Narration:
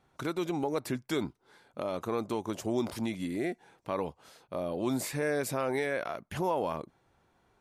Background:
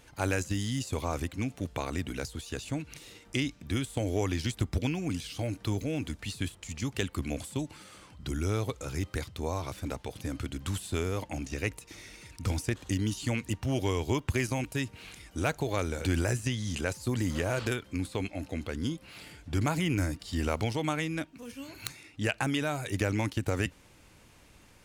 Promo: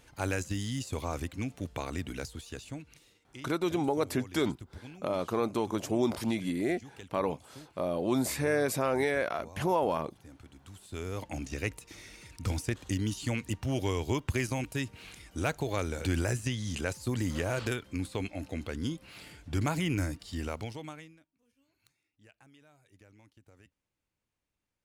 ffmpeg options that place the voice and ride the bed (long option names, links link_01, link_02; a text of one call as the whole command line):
ffmpeg -i stem1.wav -i stem2.wav -filter_complex "[0:a]adelay=3250,volume=2.5dB[link_01];[1:a]volume=13dB,afade=type=out:start_time=2.21:duration=0.98:silence=0.188365,afade=type=in:start_time=10.77:duration=0.56:silence=0.16788,afade=type=out:start_time=19.95:duration=1.24:silence=0.0375837[link_02];[link_01][link_02]amix=inputs=2:normalize=0" out.wav